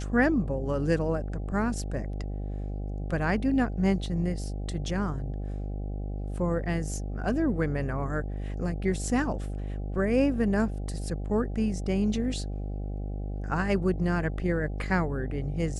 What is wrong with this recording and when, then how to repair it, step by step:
buzz 50 Hz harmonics 16 -33 dBFS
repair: de-hum 50 Hz, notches 16

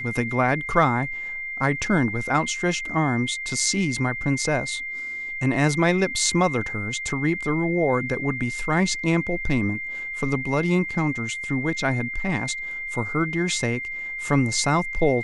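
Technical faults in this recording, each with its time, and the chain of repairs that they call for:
tone 2100 Hz -29 dBFS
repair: notch 2100 Hz, Q 30

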